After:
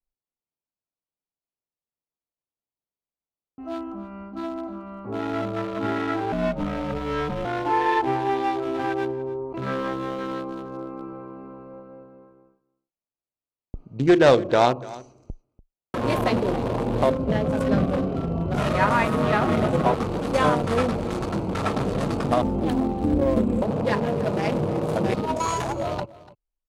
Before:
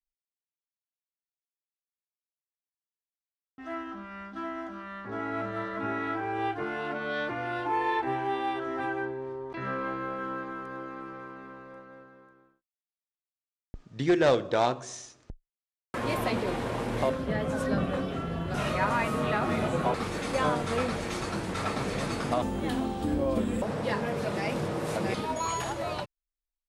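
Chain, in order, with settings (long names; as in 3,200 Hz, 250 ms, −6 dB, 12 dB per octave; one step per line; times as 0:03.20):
adaptive Wiener filter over 25 samples
0:06.32–0:07.45: frequency shifter −150 Hz
on a send: single-tap delay 291 ms −19.5 dB
on the sum: level +7.5 dB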